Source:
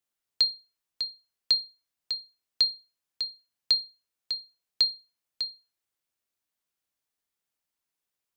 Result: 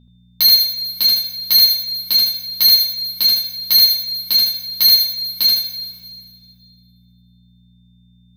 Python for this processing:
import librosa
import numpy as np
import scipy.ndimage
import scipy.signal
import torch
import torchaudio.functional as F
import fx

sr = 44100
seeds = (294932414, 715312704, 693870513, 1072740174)

p1 = x + 10.0 ** (-62.0 / 20.0) * np.sin(2.0 * np.pi * 3600.0 * np.arange(len(x)) / sr)
p2 = np.where(np.abs(p1) >= 10.0 ** (-40.5 / 20.0), p1, 0.0)
p3 = p1 + (p2 * 10.0 ** (-5.0 / 20.0))
p4 = fx.leveller(p3, sr, passes=5)
p5 = fx.rev_double_slope(p4, sr, seeds[0], early_s=0.23, late_s=2.0, knee_db=-18, drr_db=-6.0)
p6 = fx.dmg_buzz(p5, sr, base_hz=60.0, harmonics=4, level_db=-49.0, tilt_db=-3, odd_only=False)
p7 = p6 + fx.echo_feedback(p6, sr, ms=77, feedback_pct=34, wet_db=-3.5, dry=0)
y = p7 * 10.0 ** (-1.5 / 20.0)